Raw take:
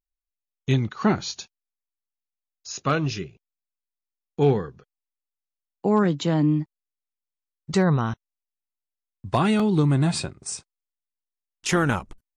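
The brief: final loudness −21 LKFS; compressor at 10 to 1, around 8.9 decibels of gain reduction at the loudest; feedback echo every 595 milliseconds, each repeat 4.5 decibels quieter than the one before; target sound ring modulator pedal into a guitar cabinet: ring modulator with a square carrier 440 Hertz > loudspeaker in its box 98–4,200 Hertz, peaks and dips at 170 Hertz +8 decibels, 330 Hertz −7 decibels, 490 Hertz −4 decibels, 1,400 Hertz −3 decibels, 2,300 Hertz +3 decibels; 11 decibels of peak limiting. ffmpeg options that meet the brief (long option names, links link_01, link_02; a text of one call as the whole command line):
ffmpeg -i in.wav -af "acompressor=threshold=-24dB:ratio=10,alimiter=limit=-21.5dB:level=0:latency=1,aecho=1:1:595|1190|1785|2380|2975|3570|4165|4760|5355:0.596|0.357|0.214|0.129|0.0772|0.0463|0.0278|0.0167|0.01,aeval=exprs='val(0)*sgn(sin(2*PI*440*n/s))':channel_layout=same,highpass=98,equalizer=frequency=170:width_type=q:width=4:gain=8,equalizer=frequency=330:width_type=q:width=4:gain=-7,equalizer=frequency=490:width_type=q:width=4:gain=-4,equalizer=frequency=1400:width_type=q:width=4:gain=-3,equalizer=frequency=2300:width_type=q:width=4:gain=3,lowpass=frequency=4200:width=0.5412,lowpass=frequency=4200:width=1.3066,volume=12.5dB" out.wav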